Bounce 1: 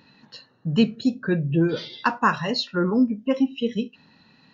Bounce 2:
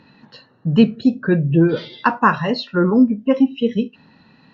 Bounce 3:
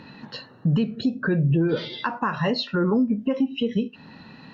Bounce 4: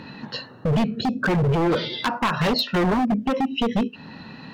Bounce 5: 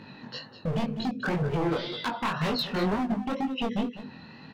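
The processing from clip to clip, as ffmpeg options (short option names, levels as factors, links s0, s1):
-filter_complex "[0:a]acrossover=split=6000[s0][s1];[s1]acompressor=threshold=0.00112:ratio=4:attack=1:release=60[s2];[s0][s2]amix=inputs=2:normalize=0,aemphasis=mode=reproduction:type=75kf,volume=2.11"
-af "acompressor=threshold=0.178:ratio=6,alimiter=limit=0.1:level=0:latency=1:release=332,volume=2"
-af "aeval=exprs='0.1*(abs(mod(val(0)/0.1+3,4)-2)-1)':c=same,volume=1.78"
-af "aecho=1:1:201:0.224,flanger=delay=18.5:depth=6.2:speed=2,volume=0.631"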